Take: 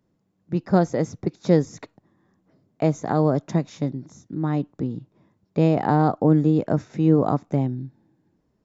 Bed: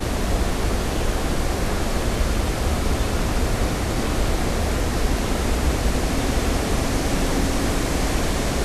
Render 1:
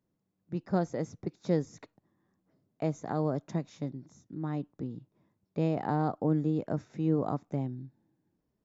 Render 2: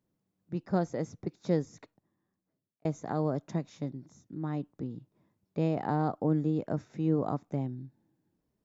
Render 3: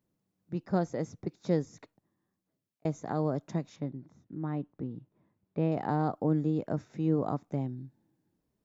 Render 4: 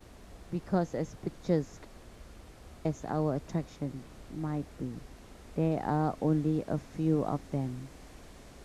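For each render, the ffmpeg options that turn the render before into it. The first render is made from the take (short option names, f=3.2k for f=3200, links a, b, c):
-af "volume=-10.5dB"
-filter_complex "[0:a]asplit=2[a][b];[a]atrim=end=2.85,asetpts=PTS-STARTPTS,afade=t=out:st=1.54:d=1.31[c];[b]atrim=start=2.85,asetpts=PTS-STARTPTS,afade=t=in:d=0.004:c=hsin[d];[c][d]concat=n=2:v=0:a=1"
-filter_complex "[0:a]asettb=1/sr,asplit=3[a][b][c];[a]atrim=end=3.764[d];[b]atrim=start=3.76:end=5.72,asetpts=PTS-STARTPTS,afade=t=in:d=0.004:c=qsin,afade=t=out:st=1.956:d=0.004:c=qsin,lowpass=2.7k[e];[c]atrim=start=5.716[f];[d][e]acrossfade=d=0.004:c1=hsin:c2=qsin[g];[g][f]acrossfade=d=0.004:c1=qsin:c2=hsin"
-filter_complex "[1:a]volume=-29dB[a];[0:a][a]amix=inputs=2:normalize=0"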